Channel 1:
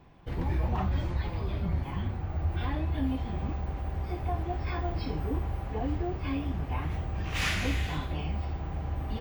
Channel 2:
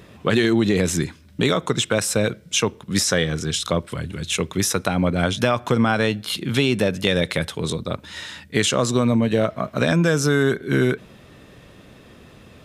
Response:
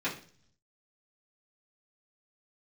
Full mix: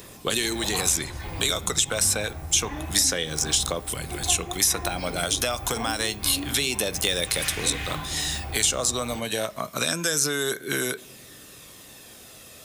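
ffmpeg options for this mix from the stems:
-filter_complex "[0:a]tremolo=f=1.4:d=0.52,volume=1.33,asplit=2[s0][s1];[s1]volume=0.316[s2];[1:a]bass=f=250:g=-8,treble=f=4000:g=13,aphaser=in_gain=1:out_gain=1:delay=1.6:decay=0.29:speed=0.28:type=triangular,volume=0.75,asplit=2[s3][s4];[s4]volume=0.0794[s5];[2:a]atrim=start_sample=2205[s6];[s2][s5]amix=inputs=2:normalize=0[s7];[s7][s6]afir=irnorm=-1:irlink=0[s8];[s0][s3][s8]amix=inputs=3:normalize=0,highshelf=f=7300:g=10,acrossover=split=550|3900[s9][s10][s11];[s9]acompressor=threshold=0.0251:ratio=4[s12];[s10]acompressor=threshold=0.0447:ratio=4[s13];[s11]acompressor=threshold=0.0631:ratio=4[s14];[s12][s13][s14]amix=inputs=3:normalize=0"

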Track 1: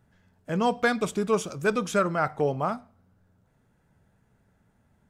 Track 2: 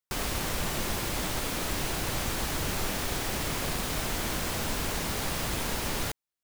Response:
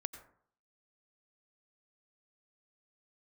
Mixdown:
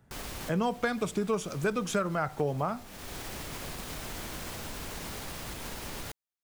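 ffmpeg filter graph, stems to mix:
-filter_complex "[0:a]acrossover=split=120[s0][s1];[s1]acompressor=threshold=0.0282:ratio=3[s2];[s0][s2]amix=inputs=2:normalize=0,volume=1.33,asplit=2[s3][s4];[1:a]alimiter=limit=0.0794:level=0:latency=1,acontrast=63,volume=0.211[s5];[s4]apad=whole_len=283672[s6];[s5][s6]sidechaincompress=threshold=0.00891:ratio=8:attack=16:release=390[s7];[s3][s7]amix=inputs=2:normalize=0"

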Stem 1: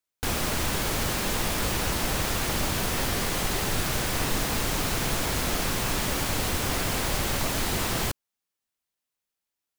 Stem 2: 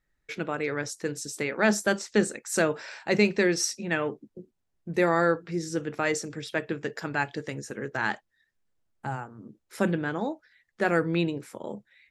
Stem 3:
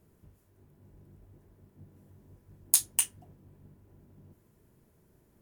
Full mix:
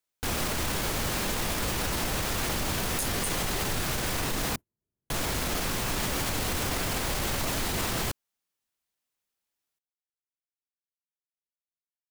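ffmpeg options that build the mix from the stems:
-filter_complex "[0:a]volume=1.06,asplit=3[s0][s1][s2];[s0]atrim=end=4.56,asetpts=PTS-STARTPTS,afade=t=out:st=4.556:d=0.004:c=hsin[s3];[s1]atrim=start=4.56:end=5.1,asetpts=PTS-STARTPTS,volume=0[s4];[s2]atrim=start=5.1,asetpts=PTS-STARTPTS,afade=t=in:d=0.004:c=hsin[s5];[s3][s4][s5]concat=n=3:v=0:a=1[s6];[2:a]agate=range=0.0398:threshold=0.00158:ratio=16:detection=peak,aeval=exprs='0.708*sin(PI/2*2*val(0)/0.708)':c=same,adelay=250,volume=0.355[s7];[s6][s7]amix=inputs=2:normalize=0,alimiter=limit=0.1:level=0:latency=1:release=21"

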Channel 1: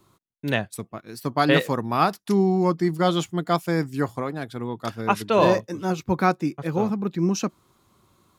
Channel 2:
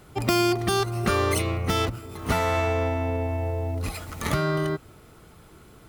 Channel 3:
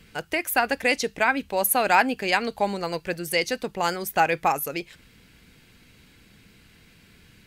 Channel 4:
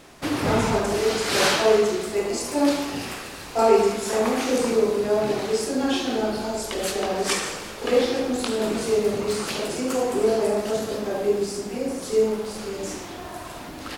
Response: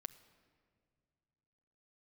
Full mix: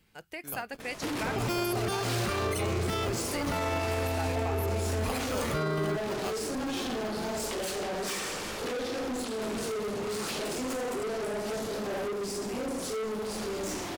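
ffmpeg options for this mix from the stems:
-filter_complex "[0:a]bass=f=250:g=-7,treble=f=4000:g=4,acrusher=samples=23:mix=1:aa=0.000001,volume=0.133[s0];[1:a]adelay=1200,volume=0.794[s1];[2:a]highshelf=f=12000:g=9,volume=0.178[s2];[3:a]alimiter=limit=0.133:level=0:latency=1:release=440,asoftclip=type=tanh:threshold=0.02,adelay=800,volume=1.41[s3];[s0][s1][s2][s3]amix=inputs=4:normalize=0,alimiter=limit=0.0794:level=0:latency=1:release=18"

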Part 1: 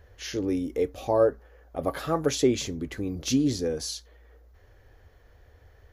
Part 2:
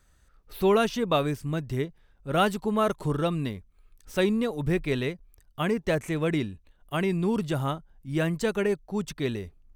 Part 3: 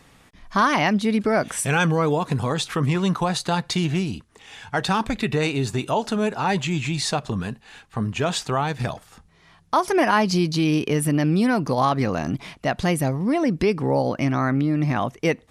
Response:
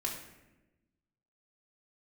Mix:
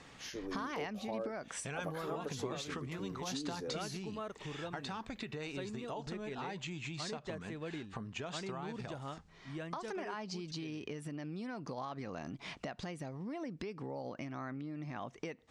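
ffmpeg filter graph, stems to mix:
-filter_complex "[0:a]lowshelf=f=370:g=-6,acompressor=threshold=0.0398:ratio=6,adynamicequalizer=threshold=0.00282:dfrequency=1900:dqfactor=0.7:tfrequency=1900:tqfactor=0.7:attack=5:release=100:ratio=0.375:range=3:mode=cutabove:tftype=highshelf,volume=0.355[s0];[1:a]dynaudnorm=f=170:g=17:m=3.76,adelay=1400,volume=0.126[s1];[2:a]acompressor=threshold=0.0251:ratio=3,volume=0.841[s2];[s1][s2]amix=inputs=2:normalize=0,lowpass=f=7600:w=0.5412,lowpass=f=7600:w=1.3066,acompressor=threshold=0.0112:ratio=4,volume=1[s3];[s0][s3]amix=inputs=2:normalize=0,lowshelf=f=120:g=-8"

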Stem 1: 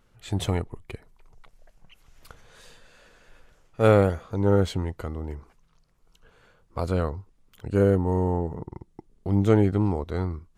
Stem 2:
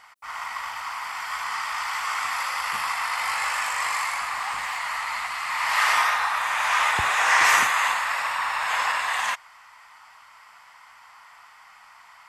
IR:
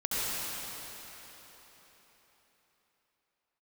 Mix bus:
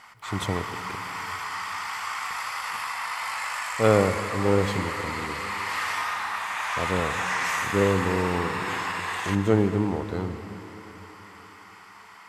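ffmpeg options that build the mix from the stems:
-filter_complex "[0:a]highpass=110,volume=0.794,asplit=2[s0][s1];[s1]volume=0.126[s2];[1:a]acompressor=threshold=0.0178:ratio=2,volume=1,asplit=2[s3][s4];[s4]volume=0.158[s5];[2:a]atrim=start_sample=2205[s6];[s2][s5]amix=inputs=2:normalize=0[s7];[s7][s6]afir=irnorm=-1:irlink=0[s8];[s0][s3][s8]amix=inputs=3:normalize=0"

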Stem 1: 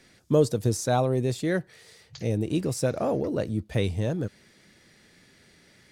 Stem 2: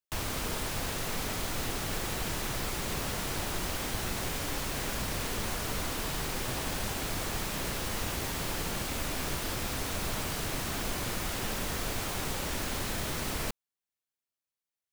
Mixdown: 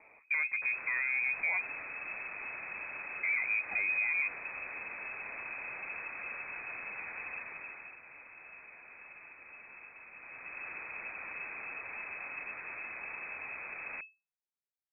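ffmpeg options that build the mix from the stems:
-filter_complex "[0:a]volume=1,asplit=3[s0][s1][s2];[s0]atrim=end=1.73,asetpts=PTS-STARTPTS,afade=t=out:st=1.726:d=0.004:c=hsin[s3];[s1]atrim=start=1.73:end=3.23,asetpts=PTS-STARTPTS,volume=0[s4];[s2]atrim=start=3.23,asetpts=PTS-STARTPTS,afade=t=in:d=0.004:c=hsin[s5];[s3][s4][s5]concat=n=3:v=0:a=1[s6];[1:a]adelay=500,volume=1.26,afade=t=out:st=7.33:d=0.64:silence=0.316228,afade=t=in:st=10.11:d=0.68:silence=0.334965[s7];[s6][s7]amix=inputs=2:normalize=0,asoftclip=type=tanh:threshold=0.1,lowpass=f=2200:t=q:w=0.5098,lowpass=f=2200:t=q:w=0.6013,lowpass=f=2200:t=q:w=0.9,lowpass=f=2200:t=q:w=2.563,afreqshift=-2600,alimiter=limit=0.0668:level=0:latency=1:release=78"

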